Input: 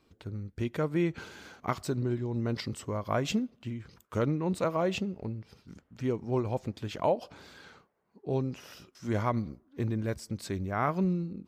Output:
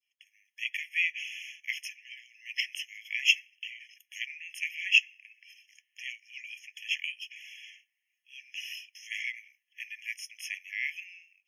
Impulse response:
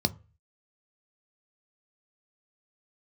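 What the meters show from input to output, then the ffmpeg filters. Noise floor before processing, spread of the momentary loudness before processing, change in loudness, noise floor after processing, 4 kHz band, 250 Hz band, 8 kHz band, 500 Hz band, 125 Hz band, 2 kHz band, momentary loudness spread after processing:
-69 dBFS, 14 LU, +0.5 dB, -83 dBFS, +11.5 dB, under -40 dB, +3.0 dB, under -40 dB, under -40 dB, +12.5 dB, 22 LU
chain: -filter_complex "[0:a]highpass=1.2k,dynaudnorm=f=180:g=3:m=15.5dB,adynamicequalizer=threshold=0.00794:dfrequency=2400:dqfactor=2:tfrequency=2400:tqfactor=2:attack=5:release=100:ratio=0.375:range=4:mode=boostabove:tftype=bell,asplit=2[a][b];[1:a]atrim=start_sample=2205,asetrate=48510,aresample=44100[c];[b][c]afir=irnorm=-1:irlink=0,volume=-8dB[d];[a][d]amix=inputs=2:normalize=0,afftfilt=real='re*eq(mod(floor(b*sr/1024/1700),2),1)':imag='im*eq(mod(floor(b*sr/1024/1700),2),1)':win_size=1024:overlap=0.75,volume=-7dB"

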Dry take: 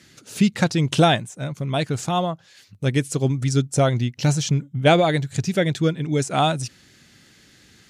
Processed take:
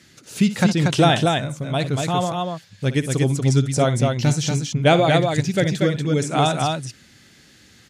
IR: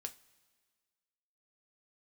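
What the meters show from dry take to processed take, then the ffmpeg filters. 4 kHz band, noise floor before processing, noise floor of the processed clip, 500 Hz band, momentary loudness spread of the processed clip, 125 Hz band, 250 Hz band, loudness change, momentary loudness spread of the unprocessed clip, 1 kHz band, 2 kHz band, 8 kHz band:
+2.0 dB, -54 dBFS, -52 dBFS, +1.5 dB, 8 LU, +1.5 dB, +1.5 dB, +1.5 dB, 10 LU, +1.5 dB, +1.5 dB, +1.5 dB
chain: -af "aecho=1:1:60|236:0.211|0.668"

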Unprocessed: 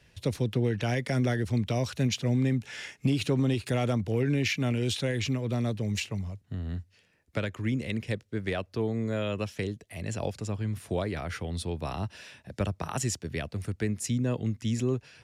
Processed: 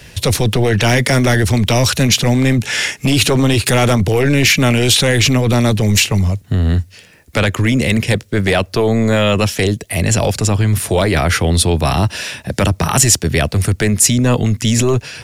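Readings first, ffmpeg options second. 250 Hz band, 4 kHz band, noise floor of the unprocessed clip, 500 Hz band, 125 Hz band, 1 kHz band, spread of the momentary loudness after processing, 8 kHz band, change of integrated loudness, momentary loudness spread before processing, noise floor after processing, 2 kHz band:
+14.0 dB, +20.5 dB, -65 dBFS, +15.5 dB, +15.0 dB, +18.5 dB, 6 LU, +23.5 dB, +16.5 dB, 9 LU, -44 dBFS, +19.0 dB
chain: -af "apsyclip=30dB,crystalizer=i=1:c=0,volume=-8.5dB"

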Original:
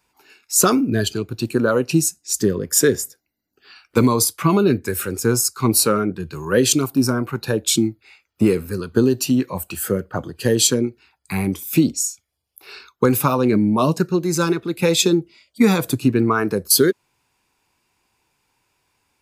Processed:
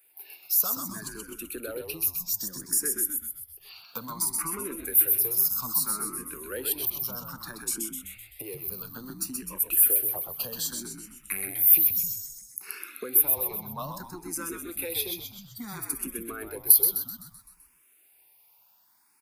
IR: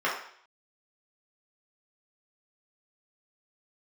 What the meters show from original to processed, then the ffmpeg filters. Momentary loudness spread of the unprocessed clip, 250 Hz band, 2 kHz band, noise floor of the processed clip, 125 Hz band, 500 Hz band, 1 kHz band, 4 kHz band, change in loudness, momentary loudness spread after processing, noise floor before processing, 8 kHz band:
8 LU, -23.0 dB, -14.0 dB, -62 dBFS, -24.0 dB, -20.5 dB, -16.0 dB, -14.0 dB, -6.0 dB, 20 LU, -76 dBFS, -7.0 dB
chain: -filter_complex "[0:a]acompressor=threshold=-33dB:ratio=3,highpass=f=600:p=1,asplit=8[a][b][c][d][e][f][g][h];[b]adelay=128,afreqshift=-73,volume=-5dB[i];[c]adelay=256,afreqshift=-146,volume=-10.5dB[j];[d]adelay=384,afreqshift=-219,volume=-16dB[k];[e]adelay=512,afreqshift=-292,volume=-21.5dB[l];[f]adelay=640,afreqshift=-365,volume=-27.1dB[m];[g]adelay=768,afreqshift=-438,volume=-32.6dB[n];[h]adelay=896,afreqshift=-511,volume=-38.1dB[o];[a][i][j][k][l][m][n][o]amix=inputs=8:normalize=0,aexciter=amount=12.4:drive=2:freq=10k,asplit=2[p][q];[q]afreqshift=0.61[r];[p][r]amix=inputs=2:normalize=1"

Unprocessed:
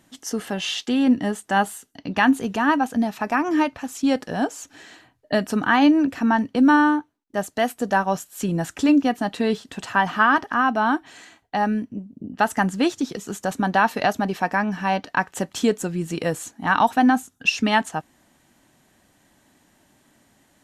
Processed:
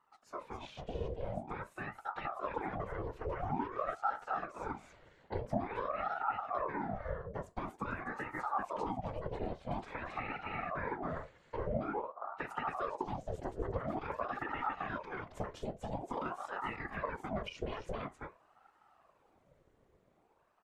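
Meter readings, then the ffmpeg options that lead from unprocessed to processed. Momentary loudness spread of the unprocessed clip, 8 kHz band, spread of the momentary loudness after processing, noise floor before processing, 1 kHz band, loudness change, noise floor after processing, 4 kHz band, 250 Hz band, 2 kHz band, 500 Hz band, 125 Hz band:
11 LU, under -25 dB, 7 LU, -62 dBFS, -16.0 dB, -18.0 dB, -71 dBFS, -24.0 dB, -24.0 dB, -20.0 dB, -13.5 dB, -11.0 dB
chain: -af "aecho=1:1:271:0.531,alimiter=limit=-14dB:level=0:latency=1:release=75,lowpass=f=1.4k:p=1,dynaudnorm=f=900:g=5:m=7.5dB,flanger=delay=1.1:depth=5.7:regen=27:speed=0.12:shape=triangular,acompressor=threshold=-24dB:ratio=6,lowshelf=f=420:g=9,bandreject=f=60:t=h:w=6,bandreject=f=120:t=h:w=6,bandreject=f=180:t=h:w=6,bandreject=f=240:t=h:w=6,bandreject=f=300:t=h:w=6,flanger=delay=6.4:depth=7.3:regen=72:speed=1.4:shape=sinusoidal,afftfilt=real='hypot(re,im)*cos(2*PI*random(0))':imag='hypot(re,im)*sin(2*PI*random(1))':win_size=512:overlap=0.75,aeval=exprs='val(0)*sin(2*PI*640*n/s+640*0.7/0.48*sin(2*PI*0.48*n/s))':c=same,volume=-3dB"

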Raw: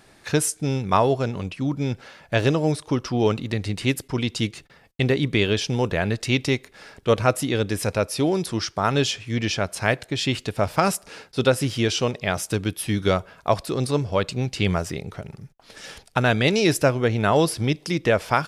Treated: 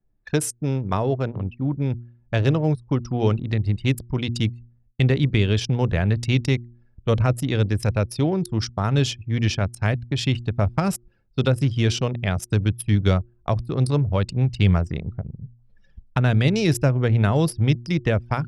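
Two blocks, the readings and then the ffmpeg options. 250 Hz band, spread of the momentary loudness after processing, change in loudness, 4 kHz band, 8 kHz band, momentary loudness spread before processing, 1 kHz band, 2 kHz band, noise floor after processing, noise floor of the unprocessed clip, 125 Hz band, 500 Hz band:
+0.5 dB, 7 LU, +0.5 dB, -3.5 dB, -4.5 dB, 8 LU, -5.5 dB, -4.0 dB, -59 dBFS, -55 dBFS, +6.0 dB, -3.5 dB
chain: -filter_complex "[0:a]asubboost=boost=3:cutoff=170,anlmdn=158,bandreject=f=118.9:t=h:w=4,bandreject=f=237.8:t=h:w=4,bandreject=f=356.7:t=h:w=4,acrossover=split=460[a][b];[b]acompressor=threshold=-24dB:ratio=6[c];[a][c]amix=inputs=2:normalize=0"

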